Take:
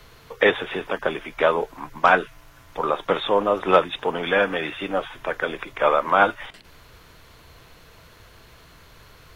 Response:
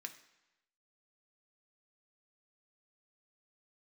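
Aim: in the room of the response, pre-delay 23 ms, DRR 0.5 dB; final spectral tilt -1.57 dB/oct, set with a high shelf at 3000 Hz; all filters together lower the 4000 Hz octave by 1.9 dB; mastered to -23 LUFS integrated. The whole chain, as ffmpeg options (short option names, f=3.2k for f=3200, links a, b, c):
-filter_complex "[0:a]highshelf=f=3k:g=6.5,equalizer=f=4k:t=o:g=-7,asplit=2[a][b];[1:a]atrim=start_sample=2205,adelay=23[c];[b][c]afir=irnorm=-1:irlink=0,volume=2.5dB[d];[a][d]amix=inputs=2:normalize=0,volume=-3dB"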